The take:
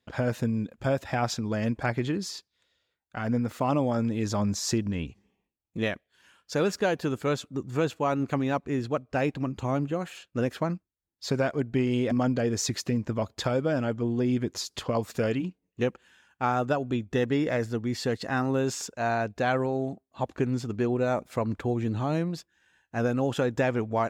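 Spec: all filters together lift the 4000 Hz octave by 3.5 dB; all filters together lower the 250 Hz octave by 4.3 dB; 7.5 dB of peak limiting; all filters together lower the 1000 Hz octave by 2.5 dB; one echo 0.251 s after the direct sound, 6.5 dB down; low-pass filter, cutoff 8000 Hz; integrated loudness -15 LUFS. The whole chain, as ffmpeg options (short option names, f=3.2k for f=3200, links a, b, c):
-af "lowpass=8k,equalizer=f=250:t=o:g=-5,equalizer=f=1k:t=o:g=-3.5,equalizer=f=4k:t=o:g=5,alimiter=limit=-22dB:level=0:latency=1,aecho=1:1:251:0.473,volume=17dB"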